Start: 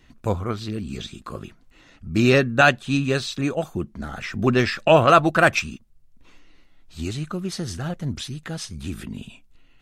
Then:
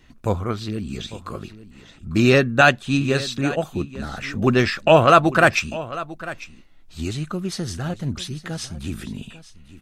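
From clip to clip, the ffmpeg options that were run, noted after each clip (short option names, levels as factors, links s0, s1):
-af "aecho=1:1:848:0.15,volume=1.19"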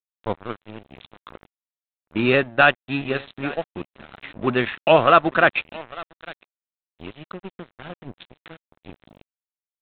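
-af "highpass=f=250:p=1,aresample=8000,aeval=exprs='sgn(val(0))*max(abs(val(0))-0.0299,0)':c=same,aresample=44100"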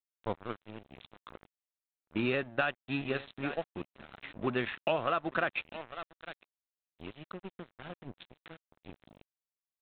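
-af "acompressor=threshold=0.126:ratio=12,volume=0.398"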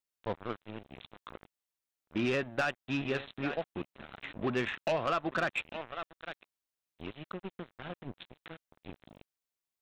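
-af "asoftclip=type=tanh:threshold=0.0473,volume=1.41"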